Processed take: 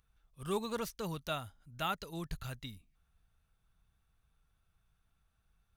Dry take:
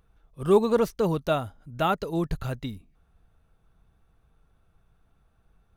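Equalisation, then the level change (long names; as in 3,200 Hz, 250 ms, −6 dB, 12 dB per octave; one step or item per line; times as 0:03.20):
guitar amp tone stack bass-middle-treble 5-5-5
+3.5 dB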